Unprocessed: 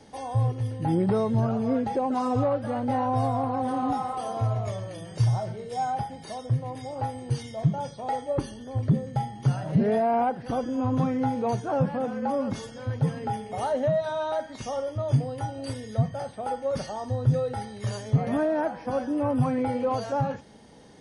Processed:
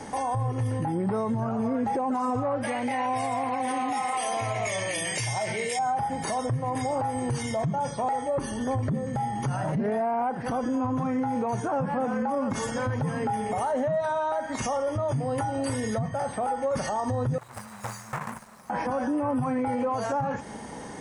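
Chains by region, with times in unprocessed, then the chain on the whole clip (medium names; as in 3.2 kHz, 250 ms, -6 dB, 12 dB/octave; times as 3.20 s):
2.63–5.79 s: high-pass 400 Hz 6 dB/octave + resonant high shelf 1.7 kHz +8 dB, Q 3
17.38–18.70 s: brick-wall FIR band-stop 230–3700 Hz + companded quantiser 4-bit + three-band isolator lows -18 dB, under 420 Hz, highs -14 dB, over 2.1 kHz
whole clip: ten-band graphic EQ 250 Hz +3 dB, 1 kHz +8 dB, 2 kHz +5 dB, 4 kHz -7 dB, 8 kHz +9 dB; compression 4:1, threshold -30 dBFS; peak limiter -29.5 dBFS; trim +9 dB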